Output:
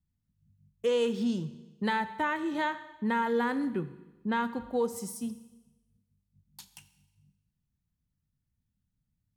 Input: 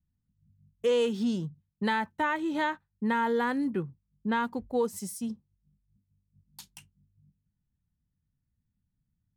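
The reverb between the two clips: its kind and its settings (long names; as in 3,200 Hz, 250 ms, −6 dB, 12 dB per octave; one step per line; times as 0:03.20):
four-comb reverb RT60 1.1 s, combs from 30 ms, DRR 12.5 dB
level −1.5 dB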